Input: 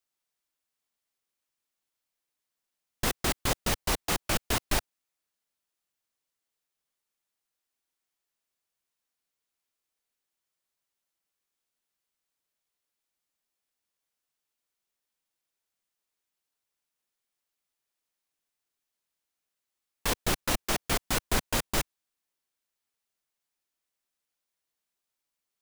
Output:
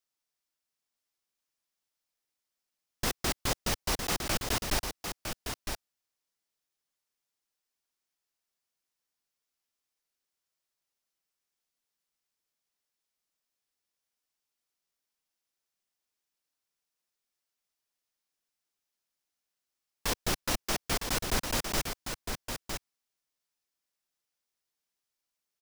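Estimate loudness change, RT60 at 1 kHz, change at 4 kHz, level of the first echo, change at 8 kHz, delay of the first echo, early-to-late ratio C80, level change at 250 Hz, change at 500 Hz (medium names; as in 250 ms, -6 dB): -3.0 dB, no reverb, -0.5 dB, -6.5 dB, -1.0 dB, 958 ms, no reverb, -2.0 dB, -2.0 dB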